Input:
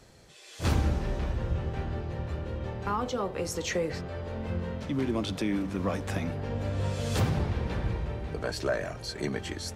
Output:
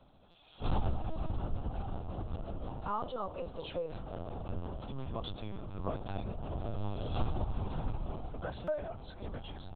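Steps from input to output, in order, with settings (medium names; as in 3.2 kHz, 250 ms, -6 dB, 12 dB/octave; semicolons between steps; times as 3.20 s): static phaser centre 810 Hz, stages 4; LPC vocoder at 8 kHz pitch kept; buffer glitch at 0.31/8.64 s, samples 256, times 5; trim -3 dB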